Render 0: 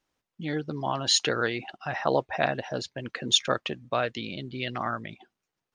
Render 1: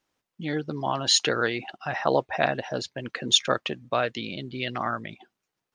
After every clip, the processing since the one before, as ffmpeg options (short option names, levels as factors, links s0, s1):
-af "lowshelf=f=61:g=-9,volume=1.26"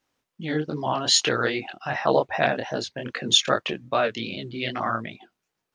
-af "flanger=delay=19:depth=7.8:speed=2.5,volume=1.78"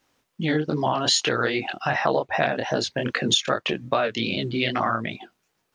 -af "acompressor=threshold=0.0398:ratio=4,volume=2.51"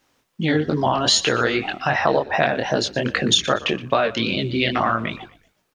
-filter_complex "[0:a]asplit=4[s0][s1][s2][s3];[s1]adelay=120,afreqshift=-53,volume=0.126[s4];[s2]adelay=240,afreqshift=-106,volume=0.0468[s5];[s3]adelay=360,afreqshift=-159,volume=0.0172[s6];[s0][s4][s5][s6]amix=inputs=4:normalize=0,volume=1.5"